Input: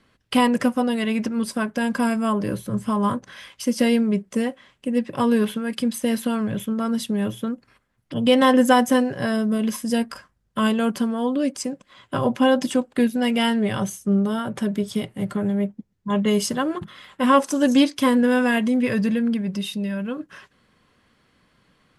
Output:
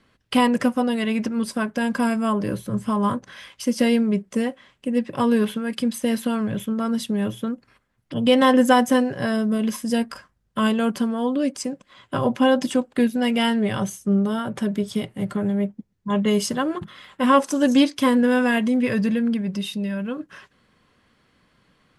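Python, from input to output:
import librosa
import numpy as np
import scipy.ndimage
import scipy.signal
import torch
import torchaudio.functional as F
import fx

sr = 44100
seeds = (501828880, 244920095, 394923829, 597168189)

y = fx.high_shelf(x, sr, hz=11000.0, db=-4.0)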